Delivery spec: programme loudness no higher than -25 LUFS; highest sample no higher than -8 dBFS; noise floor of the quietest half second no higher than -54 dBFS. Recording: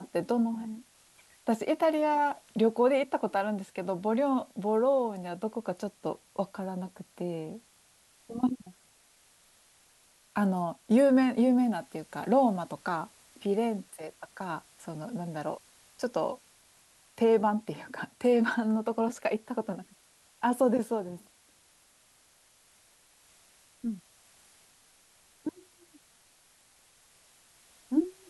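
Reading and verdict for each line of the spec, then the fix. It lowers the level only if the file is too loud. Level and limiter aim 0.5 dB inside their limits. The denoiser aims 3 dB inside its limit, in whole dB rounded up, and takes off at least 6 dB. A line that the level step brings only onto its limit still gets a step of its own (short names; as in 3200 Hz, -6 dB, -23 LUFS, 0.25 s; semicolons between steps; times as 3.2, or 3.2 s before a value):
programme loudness -30.0 LUFS: OK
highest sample -14.0 dBFS: OK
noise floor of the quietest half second -63 dBFS: OK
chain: none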